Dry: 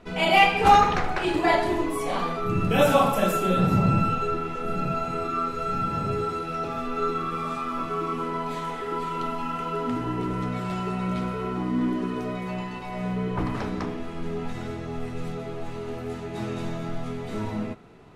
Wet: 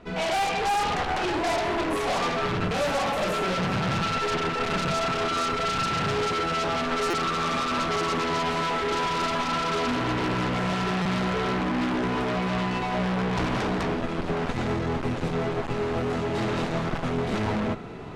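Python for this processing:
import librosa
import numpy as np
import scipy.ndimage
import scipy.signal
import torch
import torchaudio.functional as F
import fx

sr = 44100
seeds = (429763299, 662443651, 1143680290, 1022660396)

y = fx.dynamic_eq(x, sr, hz=710.0, q=1.3, threshold_db=-36.0, ratio=4.0, max_db=7)
y = fx.rider(y, sr, range_db=5, speed_s=0.5)
y = fx.cheby_harmonics(y, sr, harmonics=(5,), levels_db=(-6,), full_scale_db=-15.5)
y = fx.clip_asym(y, sr, top_db=-26.0, bottom_db=-14.0)
y = fx.air_absorb(y, sr, metres=50.0)
y = fx.buffer_glitch(y, sr, at_s=(7.1, 11.02), block=256, repeats=5)
y = y * librosa.db_to_amplitude(-3.5)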